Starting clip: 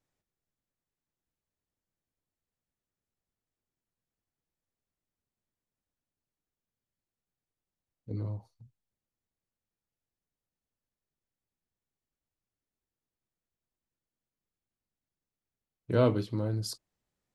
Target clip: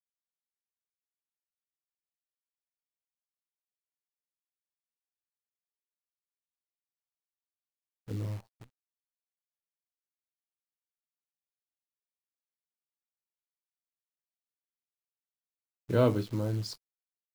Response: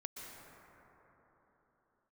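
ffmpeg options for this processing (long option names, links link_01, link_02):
-af "lowpass=5900,acrusher=bits=9:dc=4:mix=0:aa=0.000001"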